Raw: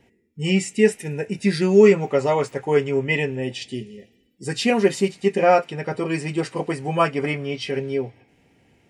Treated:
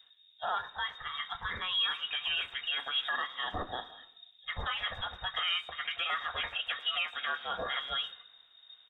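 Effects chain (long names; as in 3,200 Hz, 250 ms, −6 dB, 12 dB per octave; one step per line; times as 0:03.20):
high-pass filter 1,000 Hz 12 dB per octave
downward compressor 8 to 1, threshold −35 dBFS, peak gain reduction 17 dB
brickwall limiter −31.5 dBFS, peak gain reduction 8 dB
background noise brown −59 dBFS
voice inversion scrambler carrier 3,700 Hz
far-end echo of a speakerphone 110 ms, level −20 dB
multiband upward and downward expander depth 70%
level +7.5 dB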